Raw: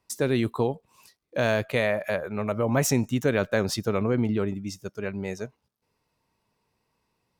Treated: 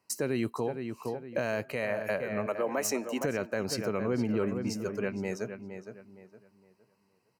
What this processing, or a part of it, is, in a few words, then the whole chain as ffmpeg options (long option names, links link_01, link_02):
PA system with an anti-feedback notch: -filter_complex "[0:a]asettb=1/sr,asplit=3[link_01][link_02][link_03];[link_01]atrim=end=2.464[link_04];[link_02]atrim=start=2.46:end=3.21,asetpts=PTS-STARTPTS,afade=type=in:duration=0.004:curve=qsin,afade=type=out:start_time=0.746:duration=0.004:curve=qsin,highpass=frequency=300:width=0.5412,highpass=frequency=300:width=1.3066[link_05];[link_03]atrim=start=3.206[link_06];[link_04][link_05]acrossfade=duration=0.004:curve1=hsin:curve2=qsin[link_07];[link_07][link_06]acrossfade=duration=0.004:curve1=qsin:curve2=hsin,highpass=130,asuperstop=centerf=3500:order=8:qfactor=5.2,asplit=2[link_08][link_09];[link_09]adelay=463,lowpass=frequency=2700:poles=1,volume=-10dB,asplit=2[link_10][link_11];[link_11]adelay=463,lowpass=frequency=2700:poles=1,volume=0.32,asplit=2[link_12][link_13];[link_13]adelay=463,lowpass=frequency=2700:poles=1,volume=0.32,asplit=2[link_14][link_15];[link_15]adelay=463,lowpass=frequency=2700:poles=1,volume=0.32[link_16];[link_08][link_10][link_12][link_14][link_16]amix=inputs=5:normalize=0,alimiter=limit=-20dB:level=0:latency=1:release=337"